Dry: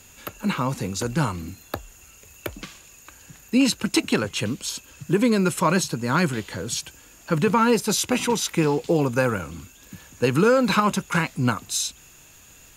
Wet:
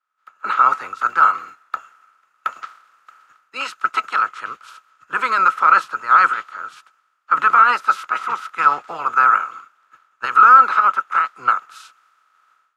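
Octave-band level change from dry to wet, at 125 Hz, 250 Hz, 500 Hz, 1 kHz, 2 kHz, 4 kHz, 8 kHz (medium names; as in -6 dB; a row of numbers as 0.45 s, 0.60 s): under -25 dB, under -20 dB, -13.0 dB, +13.5 dB, +8.5 dB, -7.5 dB, under -15 dB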